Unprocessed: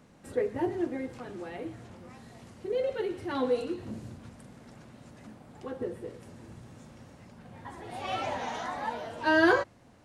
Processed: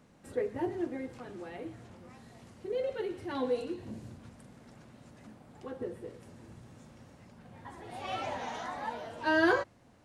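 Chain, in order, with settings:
0:03.26–0:04.01: notch filter 1,300 Hz, Q 7.8
level −3.5 dB

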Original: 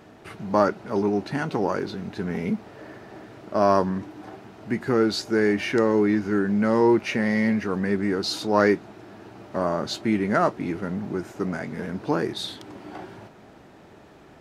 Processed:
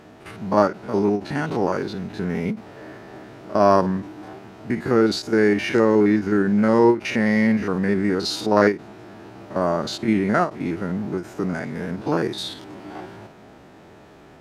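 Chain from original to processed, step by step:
spectrum averaged block by block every 50 ms
every ending faded ahead of time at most 230 dB per second
level +4 dB

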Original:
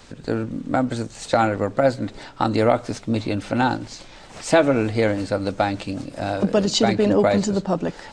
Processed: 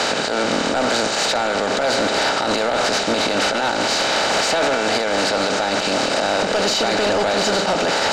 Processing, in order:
compressor on every frequency bin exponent 0.4
high-pass filter 1,200 Hz 6 dB per octave
in parallel at +1 dB: compressor whose output falls as the input rises −23 dBFS
on the sum: brickwall limiter −9 dBFS, peak gain reduction 10 dB
gain into a clipping stage and back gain 17 dB
high-frequency loss of the air 54 metres
level +3.5 dB

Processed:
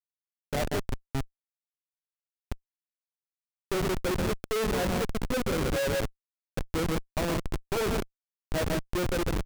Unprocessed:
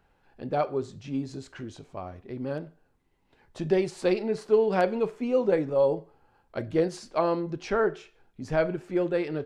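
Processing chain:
hearing-aid frequency compression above 3,100 Hz 4 to 1
loudspeakers that aren't time-aligned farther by 44 metres −6 dB, 57 metres −9 dB
comparator with hysteresis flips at −24 dBFS

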